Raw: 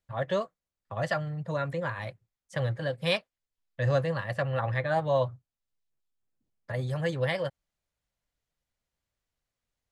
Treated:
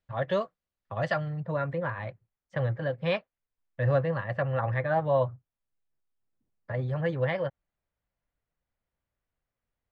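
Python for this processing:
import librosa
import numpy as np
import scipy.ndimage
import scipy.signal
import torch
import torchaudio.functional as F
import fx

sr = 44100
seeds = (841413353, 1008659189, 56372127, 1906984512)

y = fx.lowpass(x, sr, hz=fx.steps((0.0, 4100.0), (1.4, 2100.0)), slope=12)
y = y * 10.0 ** (1.0 / 20.0)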